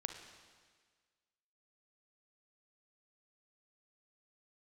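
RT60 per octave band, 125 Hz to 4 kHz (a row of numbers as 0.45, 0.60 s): 1.5, 1.6, 1.6, 1.6, 1.6, 1.6 s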